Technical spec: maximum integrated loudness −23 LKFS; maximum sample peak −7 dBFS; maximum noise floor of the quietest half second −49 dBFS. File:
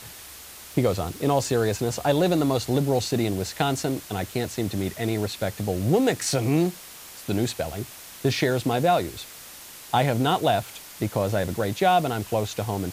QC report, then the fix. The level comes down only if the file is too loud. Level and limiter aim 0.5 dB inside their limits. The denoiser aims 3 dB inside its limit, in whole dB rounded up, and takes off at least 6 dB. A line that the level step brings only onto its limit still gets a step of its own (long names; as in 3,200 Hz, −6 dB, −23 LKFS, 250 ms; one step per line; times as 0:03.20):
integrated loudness −25.0 LKFS: in spec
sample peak −8.0 dBFS: in spec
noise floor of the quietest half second −43 dBFS: out of spec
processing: broadband denoise 9 dB, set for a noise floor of −43 dBFS